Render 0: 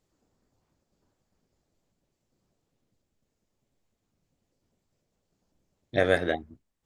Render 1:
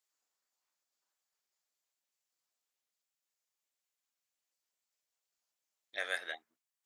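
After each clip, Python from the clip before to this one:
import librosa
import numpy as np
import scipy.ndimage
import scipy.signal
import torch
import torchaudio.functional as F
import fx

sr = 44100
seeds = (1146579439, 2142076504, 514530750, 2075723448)

y = scipy.signal.sosfilt(scipy.signal.butter(2, 1300.0, 'highpass', fs=sr, output='sos'), x)
y = fx.high_shelf(y, sr, hz=7400.0, db=8.0)
y = F.gain(torch.from_numpy(y), -6.5).numpy()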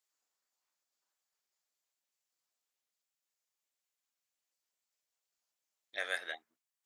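y = x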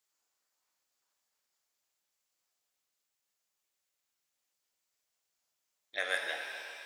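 y = fx.rev_shimmer(x, sr, seeds[0], rt60_s=2.7, semitones=7, shimmer_db=-8, drr_db=3.5)
y = F.gain(torch.from_numpy(y), 3.0).numpy()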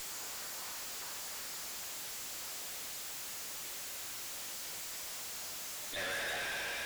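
y = x + 0.5 * 10.0 ** (-37.0 / 20.0) * np.sign(x)
y = fx.tube_stage(y, sr, drive_db=41.0, bias=0.75)
y = F.gain(torch.from_numpy(y), 5.0).numpy()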